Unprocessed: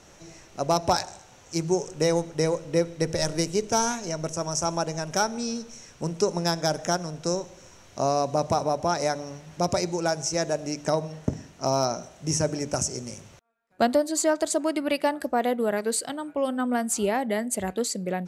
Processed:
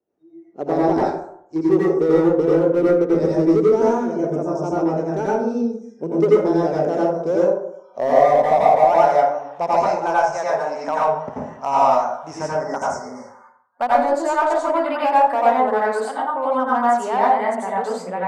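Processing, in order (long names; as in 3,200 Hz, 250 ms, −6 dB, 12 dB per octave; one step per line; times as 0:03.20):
time-frequency box erased 0:12.43–0:13.81, 2,200–4,500 Hz
band-pass filter sweep 380 Hz → 930 Hz, 0:06.17–0:09.93
dynamic equaliser 630 Hz, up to −3 dB, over −41 dBFS, Q 4.3
in parallel at −9 dB: wave folding −26.5 dBFS
on the sum: pitch vibrato 3.7 Hz 74 cents
noise reduction from a noise print of the clip's start 29 dB
dense smooth reverb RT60 0.64 s, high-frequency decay 0.5×, pre-delay 75 ms, DRR −6.5 dB
level +6.5 dB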